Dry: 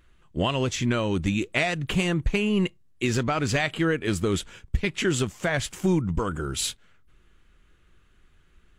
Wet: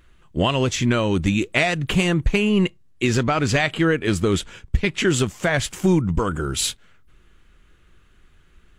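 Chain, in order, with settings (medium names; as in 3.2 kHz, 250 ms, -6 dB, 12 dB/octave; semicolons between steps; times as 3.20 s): 2.50–5.07 s: treble shelf 12 kHz -7.5 dB; trim +5 dB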